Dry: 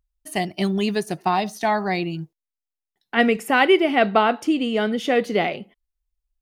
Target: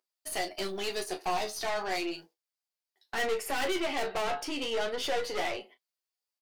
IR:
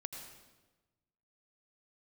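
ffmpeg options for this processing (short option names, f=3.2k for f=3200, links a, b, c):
-filter_complex "[0:a]highpass=f=380:w=0.5412,highpass=f=380:w=1.3066,equalizer=f=4.7k:w=4.3:g=8,asplit=2[a][b];[b]acompressor=threshold=-33dB:ratio=6,volume=-2dB[c];[a][c]amix=inputs=2:normalize=0,flanger=delay=7.8:depth=6.3:regen=47:speed=0.34:shape=sinusoidal,aeval=exprs='(tanh(31.6*val(0)+0.35)-tanh(0.35))/31.6':c=same,asplit=2[d][e];[e]aecho=0:1:11|35:0.501|0.299[f];[d][f]amix=inputs=2:normalize=0"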